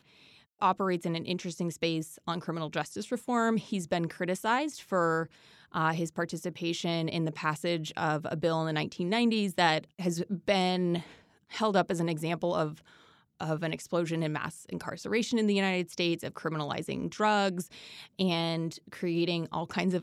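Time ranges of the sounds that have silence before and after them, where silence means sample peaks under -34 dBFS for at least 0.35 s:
0.62–5.24
5.74–11
11.53–12.69
13.41–17.62

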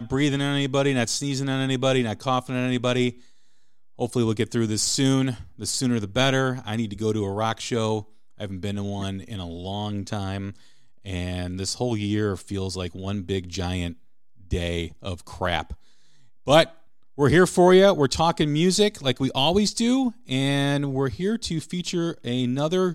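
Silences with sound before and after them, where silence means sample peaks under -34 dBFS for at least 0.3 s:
3.11–3.99
8.01–8.4
10.52–11.06
13.93–14.51
15.73–16.47
16.68–17.18

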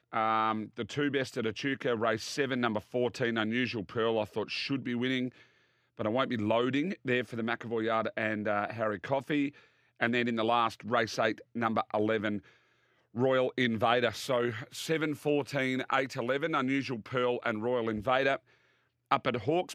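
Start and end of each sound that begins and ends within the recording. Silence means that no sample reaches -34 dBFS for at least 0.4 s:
6–9.49
10.01–12.38
13.16–18.36

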